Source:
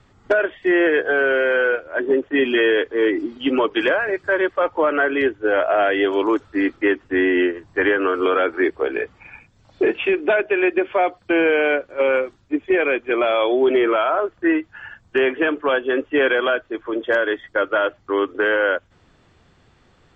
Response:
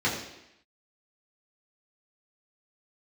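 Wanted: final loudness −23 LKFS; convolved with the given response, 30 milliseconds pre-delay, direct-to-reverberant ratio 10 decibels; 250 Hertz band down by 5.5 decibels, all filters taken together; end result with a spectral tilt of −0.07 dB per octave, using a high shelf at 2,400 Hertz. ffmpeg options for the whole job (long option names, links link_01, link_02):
-filter_complex "[0:a]equalizer=frequency=250:width_type=o:gain=-9,highshelf=frequency=2400:gain=3.5,asplit=2[link_01][link_02];[1:a]atrim=start_sample=2205,adelay=30[link_03];[link_02][link_03]afir=irnorm=-1:irlink=0,volume=-22.5dB[link_04];[link_01][link_04]amix=inputs=2:normalize=0,volume=-3dB"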